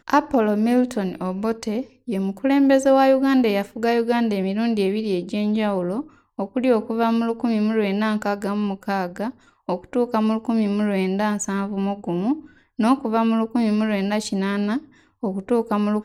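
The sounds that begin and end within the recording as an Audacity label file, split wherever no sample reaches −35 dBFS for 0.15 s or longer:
2.080000	6.020000	sound
6.390000	9.300000	sound
9.690000	12.440000	sound
12.790000	14.810000	sound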